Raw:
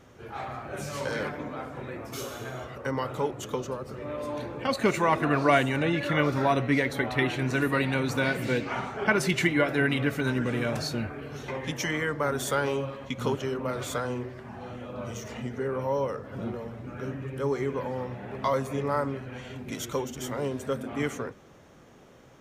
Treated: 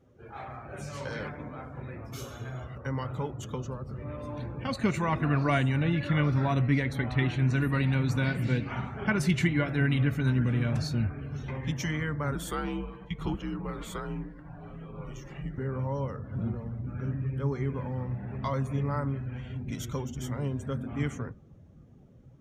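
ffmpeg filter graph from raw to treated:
-filter_complex "[0:a]asettb=1/sr,asplit=3[a][b][c];[a]atrim=end=12.354[d];[b]atrim=start=12.35:end=15.58,asetpts=PTS-STARTPTS,afade=t=in:d=0.004:c=qsin,afade=t=out:st=3.226:d=0.004:c=qsin,highpass=280,equalizer=f=6k:t=o:w=0.47:g=-5.5,afreqshift=-83[e];[c]atrim=start=15.576[f];[d][e]acrossfade=d=0.004:c1=hsin:c2=qsin[g];[g][f]acrossfade=d=0.004:c1=qsin:c2=hsin,afftdn=nr=14:nf=-50,asubboost=boost=5.5:cutoff=180,volume=-5dB"

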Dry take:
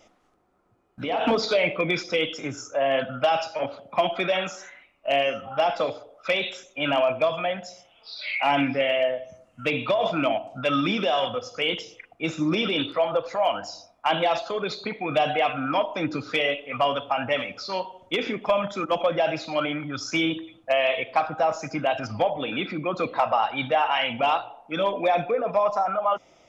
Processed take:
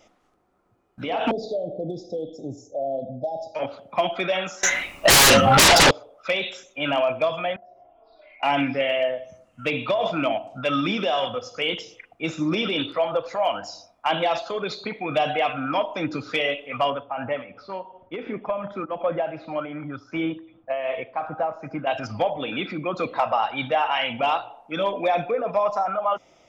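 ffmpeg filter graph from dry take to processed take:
-filter_complex "[0:a]asettb=1/sr,asplit=3[a][b][c];[a]atrim=end=1.314[d];[b]atrim=start=1.31:end=3.55,asetpts=PTS-STARTPTS,afade=t=in:d=0.004:c=qsin,afade=t=out:st=2.236:d=0.004:c=qsin,highshelf=f=2.8k:t=q:w=1.5:g=-11,acompressor=threshold=-26dB:ratio=2:attack=3.2:release=140:knee=1:detection=peak,asuperstop=centerf=1700:order=20:qfactor=0.59[e];[c]atrim=start=3.546[f];[d][e]acrossfade=d=0.004:c1=hsin:c2=qsin[g];[g][f]acrossfade=d=0.004:c1=qsin:c2=hsin,asettb=1/sr,asplit=3[h][i][j];[h]atrim=end=4.634[k];[i]atrim=start=4.63:end=5.91,asetpts=PTS-STARTPTS,afade=t=in:d=0.004:c=qsin,afade=t=out:st=1.276:d=0.004:c=qsin,bass=f=250:g=4,treble=f=4k:g=11,aeval=exprs='0.316*sin(PI/2*8.91*val(0)/0.316)':c=same[l];[j]atrim=start=5.906[m];[k][l]acrossfade=d=0.004:c1=hsin:c2=qsin[n];[n][m]acrossfade=d=0.004:c1=qsin:c2=hsin,asettb=1/sr,asplit=3[o][p][q];[o]atrim=end=7.564[r];[p]atrim=start=7.56:end=8.43,asetpts=PTS-STARTPTS,afade=t=in:d=0.004:c=qsin,afade=t=out:st=0.866:d=0.004:c=qsin,lowpass=f=730:t=q:w=1.8,acompressor=threshold=-49dB:ratio=4:attack=3.2:release=140:knee=1:detection=peak,aecho=1:1:2.9:0.79,atrim=end_sample=38367[s];[q]atrim=start=8.426[t];[r][s]acrossfade=d=0.004:c1=hsin:c2=qsin[u];[u][t]acrossfade=d=0.004:c1=qsin:c2=hsin,asettb=1/sr,asplit=3[v][w][x];[v]atrim=end=16.904[y];[w]atrim=start=16.9:end=21.87,asetpts=PTS-STARTPTS,afade=t=in:d=0.004:c=qsin,afade=t=out:st=4.966:d=0.004:c=qsin,lowpass=1.7k,tremolo=f=2.7:d=0.5[z];[x]atrim=start=21.866[aa];[y][z]acrossfade=d=0.004:c1=hsin:c2=qsin[ab];[ab][aa]acrossfade=d=0.004:c1=qsin:c2=hsin"

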